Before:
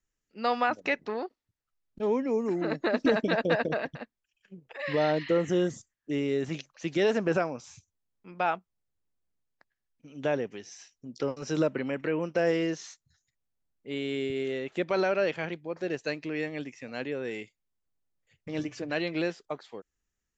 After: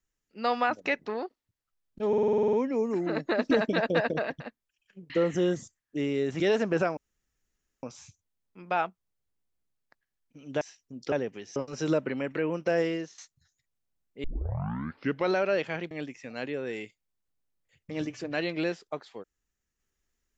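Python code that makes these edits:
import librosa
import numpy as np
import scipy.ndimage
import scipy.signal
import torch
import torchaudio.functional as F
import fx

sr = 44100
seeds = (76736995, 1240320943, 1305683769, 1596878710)

y = fx.edit(x, sr, fx.stutter(start_s=2.08, slice_s=0.05, count=10),
    fx.cut(start_s=4.65, length_s=0.59),
    fx.cut(start_s=6.54, length_s=0.41),
    fx.insert_room_tone(at_s=7.52, length_s=0.86),
    fx.move(start_s=10.3, length_s=0.44, to_s=11.25),
    fx.fade_out_to(start_s=12.35, length_s=0.52, curve='qsin', floor_db=-15.5),
    fx.tape_start(start_s=13.93, length_s=1.08),
    fx.cut(start_s=15.6, length_s=0.89), tone=tone)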